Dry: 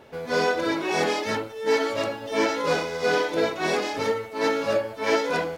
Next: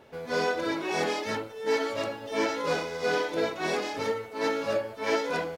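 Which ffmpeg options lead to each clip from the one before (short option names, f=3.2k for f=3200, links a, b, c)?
-filter_complex "[0:a]asplit=2[a][b];[b]adelay=1166,volume=-28dB,highshelf=f=4k:g=-26.2[c];[a][c]amix=inputs=2:normalize=0,volume=-4.5dB"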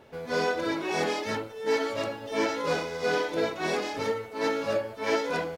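-af "lowshelf=f=180:g=3"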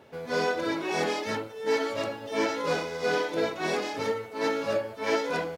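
-af "highpass=79"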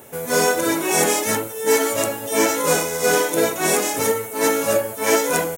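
-af "aexciter=amount=13.2:drive=5:freq=6.8k,volume=8.5dB"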